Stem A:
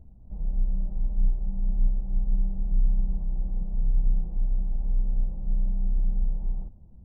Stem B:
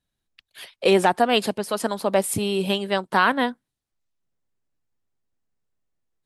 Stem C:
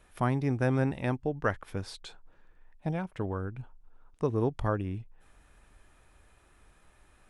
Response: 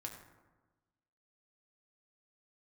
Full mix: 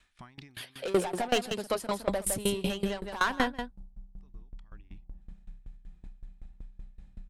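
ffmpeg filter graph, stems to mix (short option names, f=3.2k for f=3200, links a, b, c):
-filter_complex "[0:a]highpass=40,alimiter=level_in=1dB:limit=-24dB:level=0:latency=1:release=473,volume=-1dB,adelay=1700,volume=-1dB[a];[1:a]asoftclip=type=tanh:threshold=-19dB,volume=2.5dB,asplit=3[b][c][d];[c]volume=-8dB[e];[2:a]lowpass=6k,alimiter=level_in=1dB:limit=-24dB:level=0:latency=1:release=22,volume=-1dB,volume=-5dB[f];[d]apad=whole_len=321677[g];[f][g]sidechaincompress=threshold=-37dB:ratio=8:attack=16:release=1430[h];[a][h]amix=inputs=2:normalize=0,equalizer=f=125:t=o:w=1:g=-5,equalizer=f=500:t=o:w=1:g=-10,equalizer=f=2k:t=o:w=1:g=6,equalizer=f=4k:t=o:w=1:g=9,equalizer=f=8k:t=o:w=1:g=10,acompressor=threshold=-37dB:ratio=6,volume=0dB[i];[e]aecho=0:1:161:1[j];[b][i][j]amix=inputs=3:normalize=0,aeval=exprs='val(0)*pow(10,-21*if(lt(mod(5.3*n/s,1),2*abs(5.3)/1000),1-mod(5.3*n/s,1)/(2*abs(5.3)/1000),(mod(5.3*n/s,1)-2*abs(5.3)/1000)/(1-2*abs(5.3)/1000))/20)':c=same"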